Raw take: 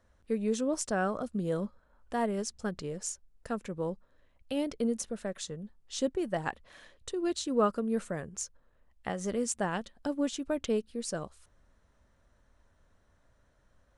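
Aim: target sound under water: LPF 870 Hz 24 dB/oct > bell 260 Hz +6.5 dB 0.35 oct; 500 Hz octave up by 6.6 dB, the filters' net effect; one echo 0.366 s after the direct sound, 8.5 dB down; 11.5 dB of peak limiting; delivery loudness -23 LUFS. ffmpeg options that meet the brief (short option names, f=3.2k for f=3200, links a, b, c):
-af "equalizer=f=500:t=o:g=7.5,alimiter=limit=-22.5dB:level=0:latency=1,lowpass=f=870:w=0.5412,lowpass=f=870:w=1.3066,equalizer=f=260:t=o:w=0.35:g=6.5,aecho=1:1:366:0.376,volume=9dB"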